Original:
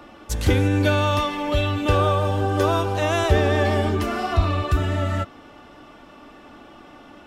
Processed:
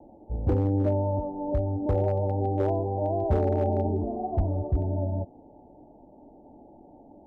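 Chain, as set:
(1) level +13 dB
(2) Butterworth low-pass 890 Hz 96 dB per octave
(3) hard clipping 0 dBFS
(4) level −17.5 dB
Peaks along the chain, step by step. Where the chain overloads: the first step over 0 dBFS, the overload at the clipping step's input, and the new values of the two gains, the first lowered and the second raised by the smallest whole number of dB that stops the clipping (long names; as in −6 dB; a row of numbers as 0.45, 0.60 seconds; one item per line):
+8.0, +7.5, 0.0, −17.5 dBFS
step 1, 7.5 dB
step 1 +5 dB, step 4 −9.5 dB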